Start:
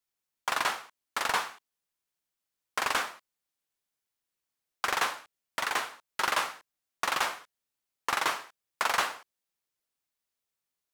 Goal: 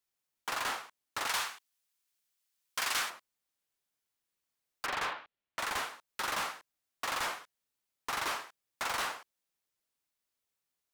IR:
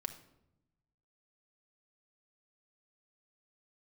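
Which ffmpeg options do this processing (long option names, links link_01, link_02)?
-filter_complex "[0:a]asettb=1/sr,asplit=3[link_01][link_02][link_03];[link_01]atrim=end=4.864[link_04];[link_02]atrim=start=4.86:end=5.59,asetpts=PTS-STARTPTS,afade=type=in:duration=0.004:curve=qsin,afade=type=out:start_time=0.726:duration=0.004:curve=qsin,lowpass=frequency=3600:width=0.5412,lowpass=frequency=3600:width=1.3066[link_05];[link_03]atrim=start=5.586[link_06];[link_04][link_05]acrossfade=duration=0.004:curve1=hsin:curve2=qsin[link_07];[link_07][link_06]acrossfade=duration=0.004:curve1=qsin:curve2=hsin,asoftclip=type=hard:threshold=-31dB,asettb=1/sr,asplit=3[link_08][link_09][link_10];[link_08]atrim=end=1.274[link_11];[link_09]atrim=start=1.27:end=3.1,asetpts=PTS-STARTPTS,afade=type=in:duration=0.004:curve=qsin,afade=type=out:start_time=1.826:duration=0.004:curve=qsin,tiltshelf=frequency=1300:gain=-6[link_12];[link_10]atrim=start=3.096[link_13];[link_11][link_12]acrossfade=duration=0.004:curve1=hsin:curve2=qsin[link_14];[link_14][link_13]acrossfade=duration=0.004:curve1=qsin:curve2=hsin"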